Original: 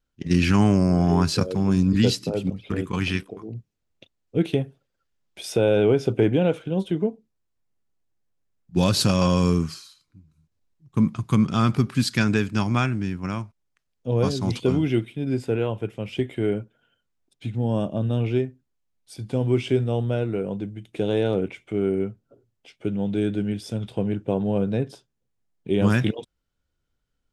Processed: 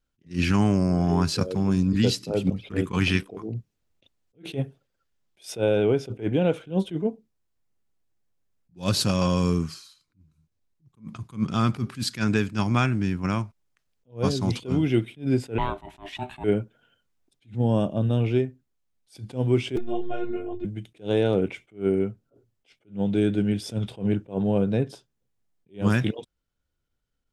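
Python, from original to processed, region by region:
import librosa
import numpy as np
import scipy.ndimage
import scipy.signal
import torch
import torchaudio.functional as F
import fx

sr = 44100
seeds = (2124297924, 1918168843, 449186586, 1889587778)

y = fx.chain(x, sr, fx.highpass(hz=180.0, slope=6),
    fx.ring_mod(carrier_hz=500.0), at=(15.58, 16.44))
y = fx.chain(y, sr, fx.lowpass(hz=2400.0, slope=6),
    fx.robotise(hz=356.0),
    fx.ensemble(), at=(19.76, 20.65))
y = fx.rider(y, sr, range_db=3, speed_s=0.5)
y = fx.attack_slew(y, sr, db_per_s=240.0)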